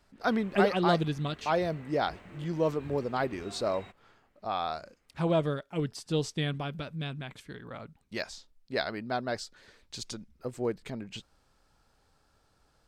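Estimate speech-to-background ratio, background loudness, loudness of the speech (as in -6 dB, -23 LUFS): 19.0 dB, -51.0 LUFS, -32.0 LUFS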